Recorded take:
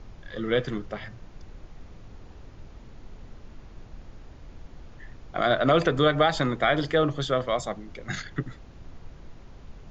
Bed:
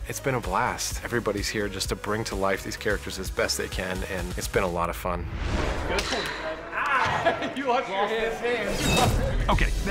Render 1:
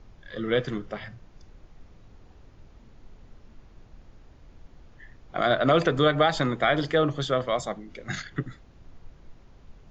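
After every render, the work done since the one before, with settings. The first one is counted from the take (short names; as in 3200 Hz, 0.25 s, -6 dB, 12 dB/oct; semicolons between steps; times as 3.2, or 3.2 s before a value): noise print and reduce 6 dB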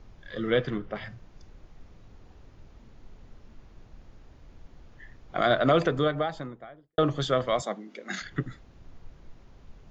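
0.5–0.94 LPF 5000 Hz -> 2800 Hz; 5.42–6.98 studio fade out; 7.62–8.22 elliptic high-pass 190 Hz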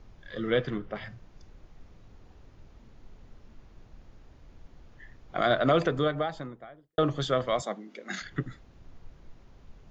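gain -1.5 dB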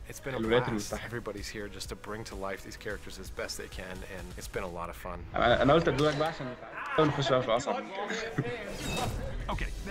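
add bed -11.5 dB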